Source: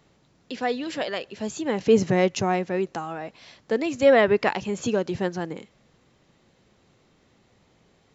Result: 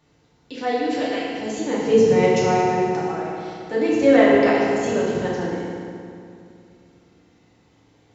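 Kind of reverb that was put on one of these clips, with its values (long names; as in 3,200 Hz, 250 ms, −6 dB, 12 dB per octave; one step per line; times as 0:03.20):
feedback delay network reverb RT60 2.5 s, low-frequency decay 1.3×, high-frequency decay 0.7×, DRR −7 dB
level −5 dB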